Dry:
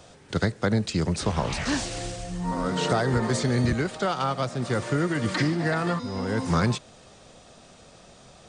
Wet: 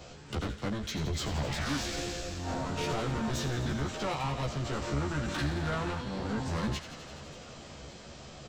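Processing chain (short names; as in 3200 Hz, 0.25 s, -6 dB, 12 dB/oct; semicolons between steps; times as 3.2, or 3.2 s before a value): octaver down 1 oct, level -5 dB; in parallel at +1 dB: compressor, threshold -31 dBFS, peak gain reduction 13.5 dB; on the sum: soft clip -24 dBFS, distortion -8 dB; doubler 14 ms -2 dB; on a send: thin delay 85 ms, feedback 80%, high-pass 1700 Hz, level -10 dB; on the sum: formant shift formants -3 st; warbling echo 0.579 s, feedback 75%, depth 190 cents, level -20 dB; gain -7 dB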